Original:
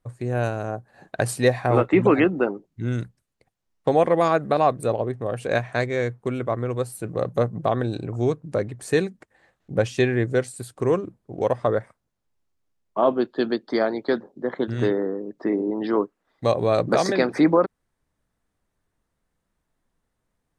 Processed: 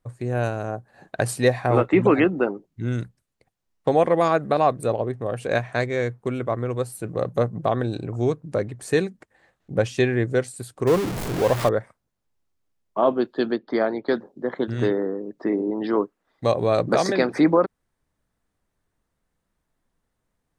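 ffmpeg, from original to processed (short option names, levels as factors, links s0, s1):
-filter_complex "[0:a]asettb=1/sr,asplit=3[s0][s1][s2];[s0]atrim=end=10.874[s3];[s1]atrim=start=10.87:end=11.69,asetpts=PTS-STARTPTS,afade=t=in:d=0.004:c=qsin,afade=t=out:st=0.816:d=0.004:c=qsin,aeval=exprs='val(0)+0.5*0.075*sgn(val(0))':c=same[s4];[s2]atrim=start=11.686[s5];[s3][s4]acrossfade=d=0.004:c1=hsin:c2=qsin[s6];[s6][s5]acrossfade=d=0.004:c1=qsin:c2=hsin,asettb=1/sr,asplit=3[s7][s8][s9];[s7]atrim=end=13.524[s10];[s8]atrim=start=13.52:end=14.08,asetpts=PTS-STARTPTS,afade=t=in:d=0.004:c=qsin,afade=t=out:st=0.556:d=0.004:c=qsin,lowpass=3200[s11];[s9]atrim=start=14.076[s12];[s10][s11]acrossfade=d=0.004:c1=hsin:c2=qsin[s13];[s13][s12]acrossfade=d=0.004:c1=qsin:c2=hsin"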